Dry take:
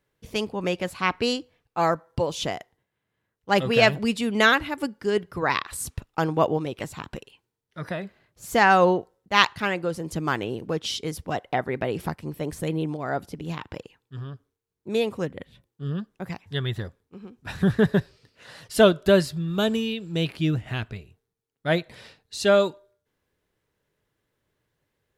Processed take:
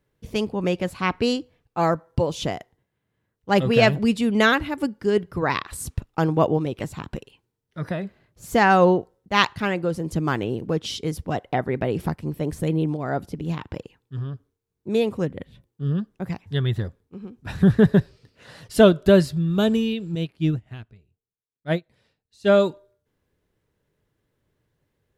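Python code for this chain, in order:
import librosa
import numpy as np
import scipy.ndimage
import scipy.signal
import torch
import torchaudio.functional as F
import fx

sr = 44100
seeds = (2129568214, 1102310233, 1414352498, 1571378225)

y = fx.low_shelf(x, sr, hz=470.0, db=8.0)
y = fx.upward_expand(y, sr, threshold_db=-26.0, expansion=2.5, at=(20.15, 22.5))
y = y * librosa.db_to_amplitude(-1.5)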